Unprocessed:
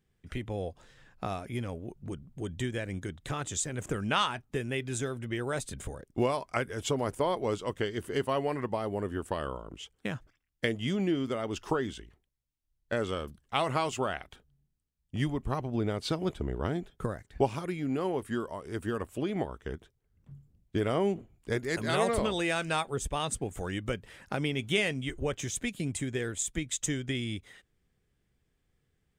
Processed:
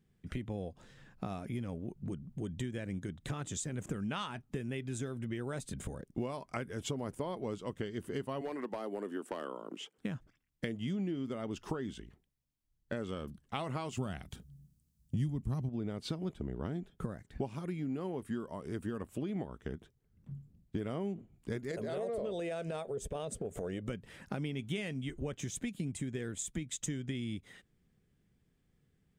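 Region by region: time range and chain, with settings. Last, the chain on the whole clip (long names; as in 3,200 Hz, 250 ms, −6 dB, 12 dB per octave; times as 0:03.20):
0:08.41–0:09.98: high-pass filter 260 Hz 24 dB per octave + hard clipping −25 dBFS + multiband upward and downward compressor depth 40%
0:13.97–0:15.69: de-essing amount 90% + high-pass filter 45 Hz + bass and treble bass +13 dB, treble +12 dB
0:21.71–0:23.88: flat-topped bell 520 Hz +13.5 dB 1 octave + transient designer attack −9 dB, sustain 0 dB + downward compressor 2 to 1, threshold −33 dBFS
whole clip: parametric band 190 Hz +9 dB 1.5 octaves; downward compressor 3 to 1, threshold −35 dBFS; level −2 dB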